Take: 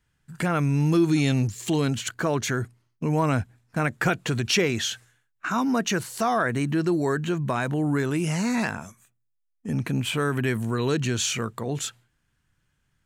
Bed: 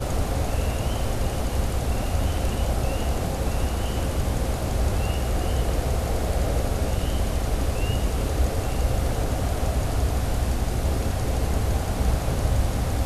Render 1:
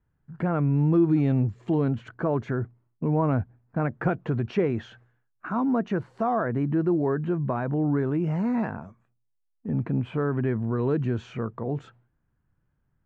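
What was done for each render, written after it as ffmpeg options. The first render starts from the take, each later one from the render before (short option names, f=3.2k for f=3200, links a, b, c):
-af "lowpass=1k"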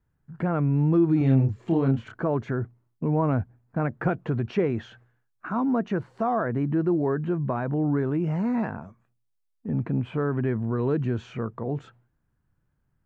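-filter_complex "[0:a]asettb=1/sr,asplit=3[a][b][c];[a]atrim=end=1.184[d];[b]atrim=start=1.18:end=2.22,asetpts=PTS-STARTPTS,afade=t=in:d=0.004:c=qsin,afade=t=out:st=1.036:d=0.004:c=qsin,asplit=2[e][f];[f]adelay=30,volume=-3.5dB[g];[e][g]amix=inputs=2:normalize=0,atrim=end_sample=45864[h];[c]atrim=start=2.216[i];[d][h]acrossfade=d=0.004:c1=hsin:c2=qsin[j];[j][i]acrossfade=d=0.004:c1=qsin:c2=hsin"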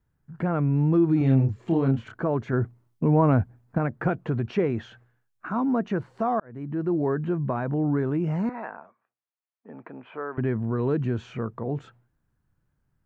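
-filter_complex "[0:a]asettb=1/sr,asplit=3[a][b][c];[a]atrim=end=8.494[d];[b]atrim=start=8.49:end=10.38,asetpts=PTS-STARTPTS,afade=t=in:d=0.004:c=qsin,afade=t=out:st=1.886:d=0.004:c=qsin,highpass=580,lowpass=2.2k[e];[c]atrim=start=10.376[f];[d][e]acrossfade=d=0.004:c1=hsin:c2=qsin[g];[g][f]acrossfade=d=0.004:c1=qsin:c2=hsin,asplit=4[h][i][j][k];[h]atrim=end=2.532[l];[i]atrim=start=2.528:end=3.782,asetpts=PTS-STARTPTS,volume=4dB[m];[j]atrim=start=3.778:end=6.4,asetpts=PTS-STARTPTS,afade=t=out:st=2.618:d=0.004:c=hsin[n];[k]atrim=start=6.4,asetpts=PTS-STARTPTS,afade=t=in:d=0.62[o];[l][m]acrossfade=d=0.004:c1=hsin:c2=hsin[p];[n][o]concat=n=2:v=0:a=1[q];[p][q]acrossfade=d=0.004:c1=hsin:c2=hsin"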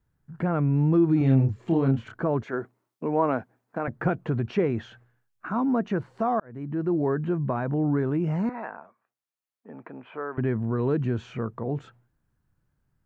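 -filter_complex "[0:a]asettb=1/sr,asplit=3[a][b][c];[a]atrim=end=2.434[d];[b]atrim=start=2.43:end=3.88,asetpts=PTS-STARTPTS,afade=t=in:d=0.004:c=qsin,afade=t=out:st=1.446:d=0.004:c=qsin,highpass=360[e];[c]atrim=start=3.876[f];[d][e]acrossfade=d=0.004:c1=hsin:c2=qsin[g];[g][f]acrossfade=d=0.004:c1=qsin:c2=hsin"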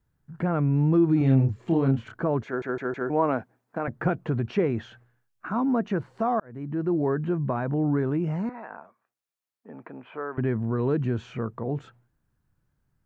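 -filter_complex "[0:a]asplit=6[a][b][c][d][e][f];[a]atrim=end=2.622[g];[b]atrim=start=2.458:end=2.622[h];[c]atrim=start=2.458:end=2.622[i];[d]atrim=start=2.458:end=2.622[j];[e]atrim=start=3.098:end=8.7,asetpts=PTS-STARTPTS,afade=t=out:st=5.022:d=0.58:silence=0.501187[k];[f]atrim=start=8.7,asetpts=PTS-STARTPTS,afade=t=in:d=0.004:c=hsin:silence=0.501187[l];[g][h]acrossfade=d=0.004:c1=hsin:c2=hsin[m];[m][i]acrossfade=d=0.004:c1=hsin:c2=hsin[n];[n][j]acrossfade=d=0.004:c1=hsin:c2=hsin[o];[k][l]concat=n=2:v=0:a=1[p];[o][p]acrossfade=d=0.004:c1=hsin:c2=hsin"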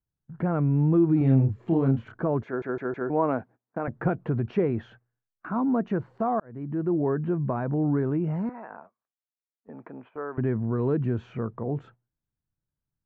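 -af "lowpass=f=1.4k:p=1,agate=range=-15dB:threshold=-48dB:ratio=16:detection=peak"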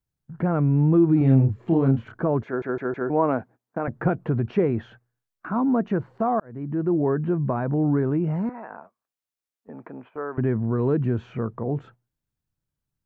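-af "volume=3dB"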